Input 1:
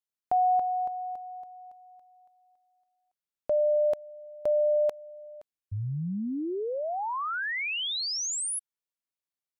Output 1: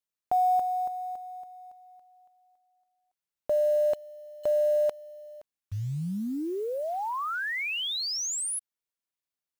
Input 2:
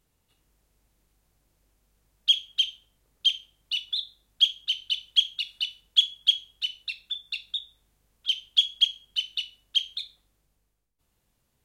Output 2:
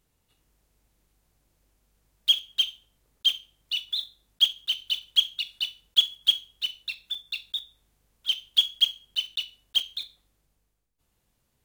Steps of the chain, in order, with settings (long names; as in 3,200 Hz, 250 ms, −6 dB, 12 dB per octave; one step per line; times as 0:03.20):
one scale factor per block 5 bits